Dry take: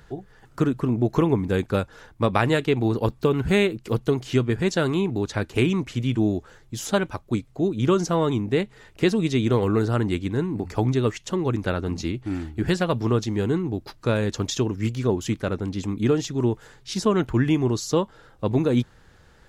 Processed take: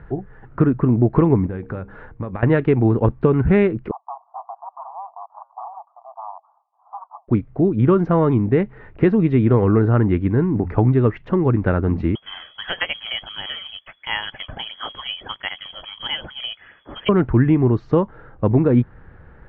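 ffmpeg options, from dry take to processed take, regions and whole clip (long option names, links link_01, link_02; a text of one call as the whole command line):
ffmpeg -i in.wav -filter_complex "[0:a]asettb=1/sr,asplit=3[link_01][link_02][link_03];[link_01]atrim=end=1.464[link_04];[link_02]atrim=start=1.46:end=2.43,asetpts=PTS-STARTPTS,afade=type=in:duration=0.004:curve=qsin,afade=type=out:start_time=0.966:duration=0.004:curve=qsin,acompressor=threshold=-32dB:ratio=10:attack=3.2:release=140:knee=1:detection=peak,bandreject=frequency=66.68:width_type=h:width=4,bandreject=frequency=133.36:width_type=h:width=4,bandreject=frequency=200.04:width_type=h:width=4,bandreject=frequency=266.72:width_type=h:width=4,bandreject=frequency=333.4:width_type=h:width=4,bandreject=frequency=400.08:width_type=h:width=4,bandreject=frequency=466.76:width_type=h:width=4[link_05];[link_03]atrim=start=2.426[link_06];[link_04][link_05]acrossfade=duration=0.004:curve1=hsin:curve2=qsin[link_07];[link_07][link_06]acrossfade=duration=0.004:curve1=qsin:curve2=hsin,asettb=1/sr,asplit=3[link_08][link_09][link_10];[link_08]atrim=end=3.914[link_11];[link_09]atrim=start=3.91:end=7.28,asetpts=PTS-STARTPTS,afade=type=in:duration=0.004:curve=qsin,afade=type=out:start_time=3.366:duration=0.004:curve=qsin,flanger=delay=2.3:depth=5.7:regen=-89:speed=1.6:shape=sinusoidal,aeval=exprs='0.0447*(abs(mod(val(0)/0.0447+3,4)-2)-1)':channel_layout=same,asuperpass=centerf=890:order=12:qfactor=1.8[link_12];[link_10]atrim=start=7.276[link_13];[link_11][link_12]acrossfade=duration=0.004:curve1=hsin:curve2=qsin[link_14];[link_14][link_13]acrossfade=duration=0.004:curve1=qsin:curve2=hsin,asettb=1/sr,asplit=3[link_15][link_16][link_17];[link_15]atrim=end=12.154[link_18];[link_16]atrim=start=12.15:end=17.09,asetpts=PTS-STARTPTS,afade=type=in:duration=0.004:curve=qsin,afade=type=out:start_time=4.936:duration=0.004:curve=qsin,lowpass=frequency=2900:width_type=q:width=0.5098,lowpass=frequency=2900:width_type=q:width=0.6013,lowpass=frequency=2900:width_type=q:width=0.9,lowpass=frequency=2900:width_type=q:width=2.563,afreqshift=-3400,aphaser=in_gain=1:out_gain=1:delay=1.7:decay=0.36:speed=1.5:type=sinusoidal[link_19];[link_17]atrim=start=17.086[link_20];[link_18][link_19]acrossfade=duration=0.004:curve1=hsin:curve2=qsin[link_21];[link_21][link_20]acrossfade=duration=0.004:curve1=qsin:curve2=hsin,lowpass=frequency=2000:width=0.5412,lowpass=frequency=2000:width=1.3066,lowshelf=frequency=250:gain=5,acompressor=threshold=-22dB:ratio=1.5,volume=6dB" out.wav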